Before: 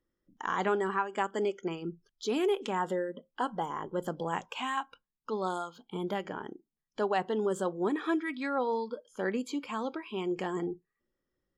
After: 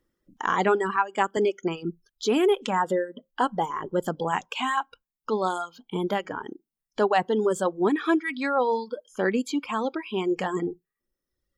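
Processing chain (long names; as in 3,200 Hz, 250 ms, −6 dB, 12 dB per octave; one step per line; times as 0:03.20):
reverb reduction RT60 1.1 s
0:00.96–0:01.37: multiband upward and downward expander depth 40%
level +8 dB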